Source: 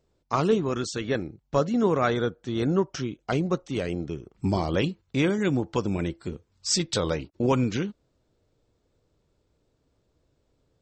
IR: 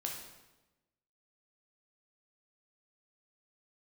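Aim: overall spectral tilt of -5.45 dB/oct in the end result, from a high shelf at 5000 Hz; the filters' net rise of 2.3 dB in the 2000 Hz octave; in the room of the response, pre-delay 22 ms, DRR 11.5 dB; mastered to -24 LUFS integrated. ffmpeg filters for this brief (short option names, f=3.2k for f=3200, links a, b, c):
-filter_complex "[0:a]equalizer=f=2k:t=o:g=4,highshelf=f=5k:g=-5.5,asplit=2[a][b];[1:a]atrim=start_sample=2205,adelay=22[c];[b][c]afir=irnorm=-1:irlink=0,volume=-12dB[d];[a][d]amix=inputs=2:normalize=0,volume=2.5dB"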